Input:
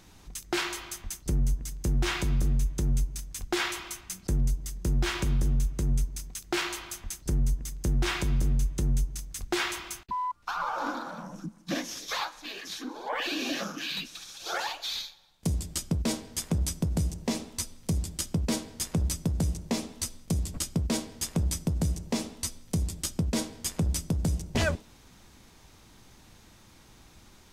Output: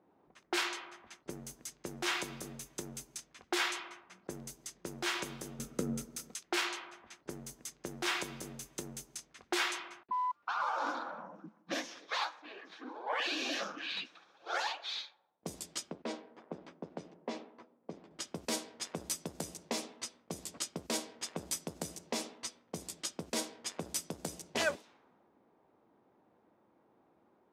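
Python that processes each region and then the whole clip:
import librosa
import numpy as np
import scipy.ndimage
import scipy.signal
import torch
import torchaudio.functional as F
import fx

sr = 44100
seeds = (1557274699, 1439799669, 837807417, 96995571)

y = fx.chain(x, sr, fx.low_shelf(hz=210.0, db=7.5),
    fx.small_body(hz=(230.0, 470.0, 1300.0), ring_ms=25, db=11), at=(5.59, 6.35))
y = fx.chain(y, sr, fx.highpass(hz=190.0, slope=12),
    fx.spacing_loss(db_at_10k=23), at=(15.91, 18.11))
y = fx.env_lowpass(y, sr, base_hz=570.0, full_db=-25.5)
y = scipy.signal.sosfilt(scipy.signal.butter(2, 390.0, 'highpass', fs=sr, output='sos'), y)
y = y * librosa.db_to_amplitude(-2.5)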